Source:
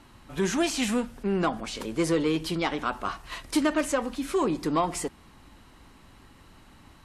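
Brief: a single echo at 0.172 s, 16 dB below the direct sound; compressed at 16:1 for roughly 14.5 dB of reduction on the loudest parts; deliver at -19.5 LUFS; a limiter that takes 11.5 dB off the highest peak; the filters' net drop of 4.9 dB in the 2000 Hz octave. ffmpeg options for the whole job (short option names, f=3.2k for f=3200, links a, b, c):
-af "equalizer=f=2k:t=o:g=-6.5,acompressor=threshold=-35dB:ratio=16,alimiter=level_in=10.5dB:limit=-24dB:level=0:latency=1,volume=-10.5dB,aecho=1:1:172:0.158,volume=23.5dB"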